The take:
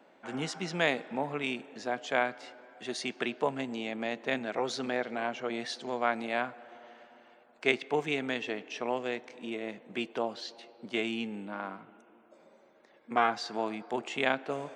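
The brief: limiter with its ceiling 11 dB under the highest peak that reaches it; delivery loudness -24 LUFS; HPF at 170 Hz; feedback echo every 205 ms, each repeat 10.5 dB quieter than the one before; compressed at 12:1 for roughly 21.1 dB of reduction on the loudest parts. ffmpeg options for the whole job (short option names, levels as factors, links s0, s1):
-af "highpass=170,acompressor=threshold=0.00708:ratio=12,alimiter=level_in=4.73:limit=0.0631:level=0:latency=1,volume=0.211,aecho=1:1:205|410|615:0.299|0.0896|0.0269,volume=18.8"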